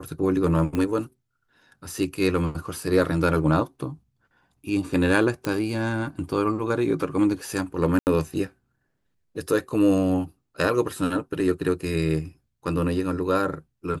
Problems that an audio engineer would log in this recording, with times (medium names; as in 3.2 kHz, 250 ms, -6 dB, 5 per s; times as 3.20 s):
0.75 s: pop -15 dBFS
5.45 s: pop -13 dBFS
7.99–8.07 s: dropout 79 ms